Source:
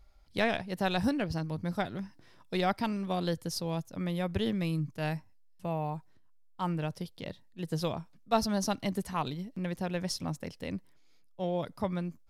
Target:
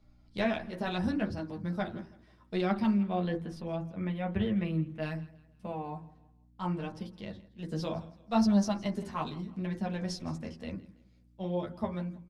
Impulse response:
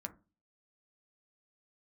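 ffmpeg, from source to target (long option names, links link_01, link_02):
-filter_complex "[0:a]lowpass=7500,asplit=3[link_01][link_02][link_03];[link_01]afade=type=out:start_time=2.92:duration=0.02[link_04];[link_02]highshelf=frequency=3500:width_type=q:width=1.5:gain=-9.5,afade=type=in:start_time=2.92:duration=0.02,afade=type=out:start_time=5:duration=0.02[link_05];[link_03]afade=type=in:start_time=5:duration=0.02[link_06];[link_04][link_05][link_06]amix=inputs=3:normalize=0,acontrast=68,flanger=delay=9.6:depth=3.5:regen=-1:speed=0.71:shape=triangular,aeval=exprs='val(0)+0.00141*(sin(2*PI*60*n/s)+sin(2*PI*2*60*n/s)/2+sin(2*PI*3*60*n/s)/3+sin(2*PI*4*60*n/s)/4+sin(2*PI*5*60*n/s)/5)':channel_layout=same,aecho=1:1:164|328|492:0.1|0.038|0.0144[link_07];[1:a]atrim=start_sample=2205,asetrate=48510,aresample=44100[link_08];[link_07][link_08]afir=irnorm=-1:irlink=0,volume=-2.5dB" -ar 48000 -c:a libopus -b:a 48k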